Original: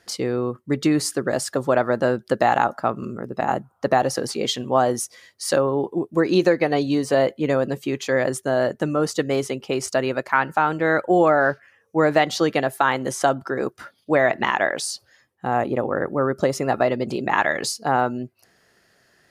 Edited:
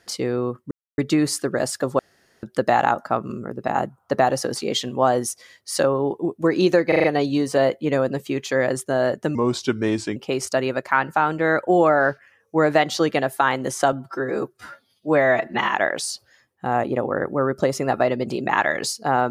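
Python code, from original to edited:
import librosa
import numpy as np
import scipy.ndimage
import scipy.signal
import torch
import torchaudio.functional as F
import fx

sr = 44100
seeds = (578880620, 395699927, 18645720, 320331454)

y = fx.edit(x, sr, fx.insert_silence(at_s=0.71, length_s=0.27),
    fx.room_tone_fill(start_s=1.72, length_s=0.44),
    fx.stutter(start_s=6.61, slice_s=0.04, count=5),
    fx.speed_span(start_s=8.92, length_s=0.65, speed=0.8),
    fx.stretch_span(start_s=13.33, length_s=1.21, factor=1.5), tone=tone)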